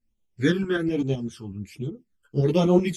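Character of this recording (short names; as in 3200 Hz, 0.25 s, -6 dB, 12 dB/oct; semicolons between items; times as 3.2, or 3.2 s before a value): phasing stages 12, 1.2 Hz, lowest notch 620–1700 Hz; tremolo saw up 7.9 Hz, depth 55%; a shimmering, thickened sound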